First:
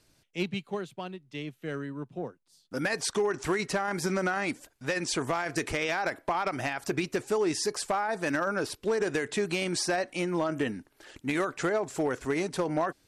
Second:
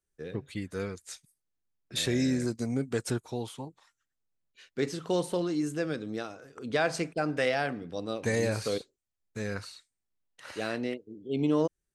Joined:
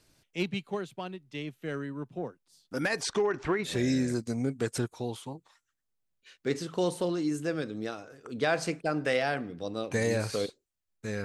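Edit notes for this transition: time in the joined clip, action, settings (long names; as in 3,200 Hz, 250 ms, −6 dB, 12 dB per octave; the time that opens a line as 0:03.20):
first
0:03.03–0:03.79: low-pass filter 7,400 Hz → 1,300 Hz
0:03.70: continue with second from 0:02.02, crossfade 0.18 s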